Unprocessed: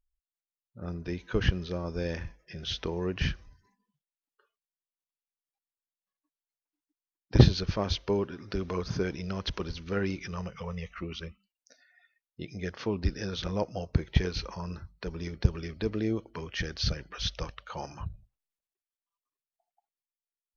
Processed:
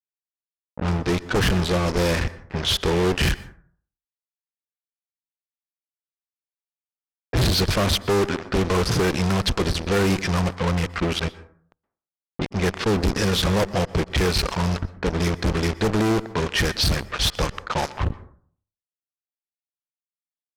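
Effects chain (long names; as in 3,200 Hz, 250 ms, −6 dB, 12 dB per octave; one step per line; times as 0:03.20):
fuzz pedal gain 42 dB, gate −41 dBFS
low-pass that shuts in the quiet parts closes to 1,000 Hz, open at −13.5 dBFS
on a send: convolution reverb RT60 0.55 s, pre-delay 112 ms, DRR 17.5 dB
on the sum: level −4 dB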